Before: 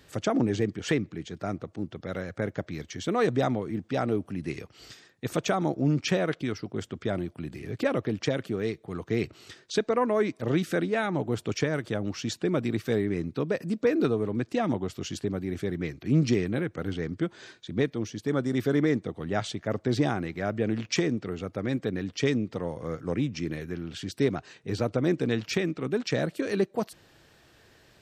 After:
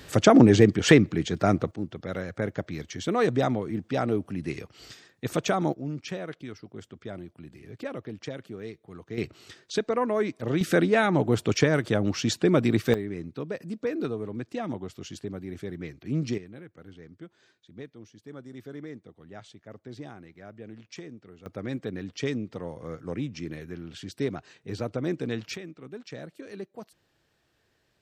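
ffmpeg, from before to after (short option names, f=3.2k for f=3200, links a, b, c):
-af "asetnsamples=n=441:p=0,asendcmd='1.71 volume volume 1dB;5.73 volume volume -9dB;9.18 volume volume -1dB;10.61 volume volume 5.5dB;12.94 volume volume -5.5dB;16.38 volume volume -16dB;21.46 volume volume -4dB;25.56 volume volume -13dB',volume=10dB"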